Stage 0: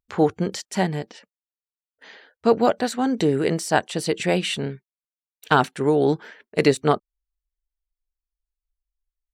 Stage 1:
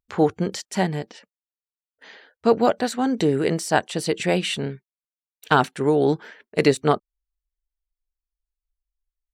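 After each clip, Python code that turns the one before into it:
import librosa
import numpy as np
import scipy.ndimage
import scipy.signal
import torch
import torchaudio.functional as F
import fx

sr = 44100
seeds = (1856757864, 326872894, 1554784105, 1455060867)

y = x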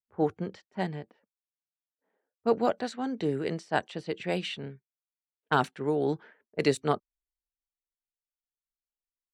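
y = fx.env_lowpass(x, sr, base_hz=680.0, full_db=-15.0)
y = fx.band_widen(y, sr, depth_pct=40)
y = F.gain(torch.from_numpy(y), -9.0).numpy()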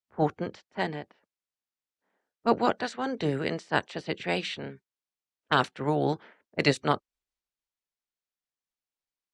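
y = fx.spec_clip(x, sr, under_db=12)
y = scipy.signal.sosfilt(scipy.signal.butter(2, 7100.0, 'lowpass', fs=sr, output='sos'), y)
y = F.gain(torch.from_numpy(y), 1.5).numpy()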